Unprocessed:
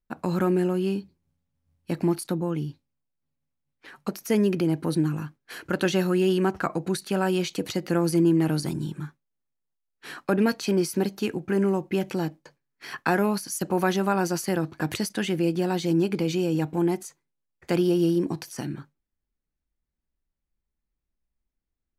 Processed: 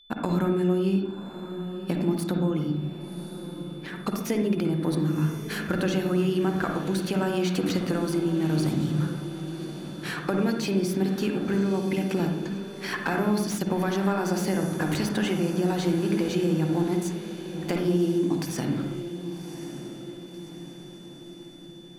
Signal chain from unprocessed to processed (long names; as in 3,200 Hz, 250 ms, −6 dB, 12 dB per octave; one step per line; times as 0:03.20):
downward compressor 5 to 1, threshold −31 dBFS, peak gain reduction 13 dB
feedback delay with all-pass diffusion 1,106 ms, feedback 55%, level −11.5 dB
steady tone 3,500 Hz −59 dBFS
on a send at −4 dB: convolution reverb RT60 0.70 s, pre-delay 46 ms
on the sum: slew-rate limiting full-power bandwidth 73 Hz
level +5.5 dB